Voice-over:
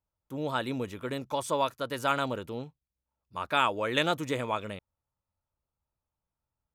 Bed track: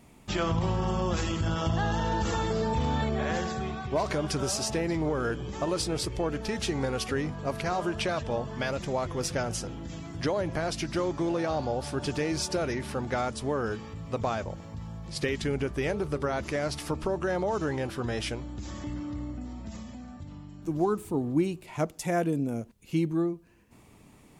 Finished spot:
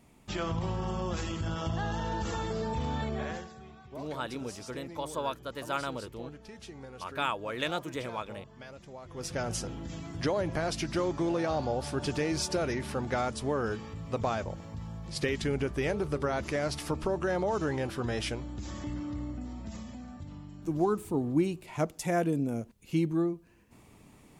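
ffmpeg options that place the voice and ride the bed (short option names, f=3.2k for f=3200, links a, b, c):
-filter_complex "[0:a]adelay=3650,volume=-5.5dB[a];[1:a]volume=10.5dB,afade=t=out:st=3.22:d=0.27:silence=0.266073,afade=t=in:st=9.04:d=0.5:silence=0.16788[b];[a][b]amix=inputs=2:normalize=0"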